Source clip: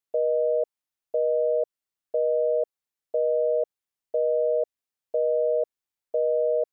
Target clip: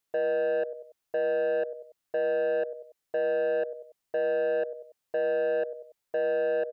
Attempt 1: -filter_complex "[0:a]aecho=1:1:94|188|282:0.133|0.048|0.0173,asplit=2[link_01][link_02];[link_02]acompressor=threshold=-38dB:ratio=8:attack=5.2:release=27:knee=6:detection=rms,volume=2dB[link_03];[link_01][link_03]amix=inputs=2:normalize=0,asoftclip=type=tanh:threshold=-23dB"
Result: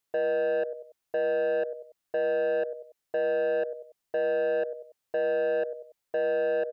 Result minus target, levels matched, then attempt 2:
downward compressor: peak gain reduction −6 dB
-filter_complex "[0:a]aecho=1:1:94|188|282:0.133|0.048|0.0173,asplit=2[link_01][link_02];[link_02]acompressor=threshold=-45dB:ratio=8:attack=5.2:release=27:knee=6:detection=rms,volume=2dB[link_03];[link_01][link_03]amix=inputs=2:normalize=0,asoftclip=type=tanh:threshold=-23dB"

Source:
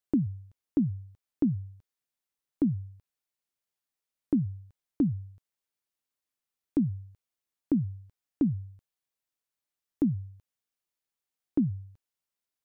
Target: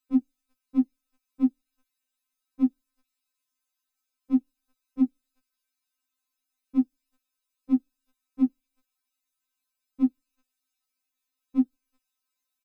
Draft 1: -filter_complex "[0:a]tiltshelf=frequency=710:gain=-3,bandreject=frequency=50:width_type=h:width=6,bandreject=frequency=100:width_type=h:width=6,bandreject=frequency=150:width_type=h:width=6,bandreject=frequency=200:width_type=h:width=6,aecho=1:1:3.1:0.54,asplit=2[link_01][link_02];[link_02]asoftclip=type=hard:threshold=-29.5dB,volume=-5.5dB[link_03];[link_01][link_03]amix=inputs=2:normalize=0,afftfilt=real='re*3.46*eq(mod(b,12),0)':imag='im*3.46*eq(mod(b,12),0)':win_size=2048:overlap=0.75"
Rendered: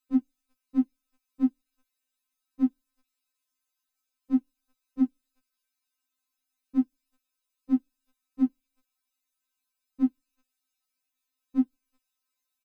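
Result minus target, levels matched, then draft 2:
hard clipping: distortion +7 dB
-filter_complex "[0:a]tiltshelf=frequency=710:gain=-3,bandreject=frequency=50:width_type=h:width=6,bandreject=frequency=100:width_type=h:width=6,bandreject=frequency=150:width_type=h:width=6,bandreject=frequency=200:width_type=h:width=6,aecho=1:1:3.1:0.54,asplit=2[link_01][link_02];[link_02]asoftclip=type=hard:threshold=-22.5dB,volume=-5.5dB[link_03];[link_01][link_03]amix=inputs=2:normalize=0,afftfilt=real='re*3.46*eq(mod(b,12),0)':imag='im*3.46*eq(mod(b,12),0)':win_size=2048:overlap=0.75"

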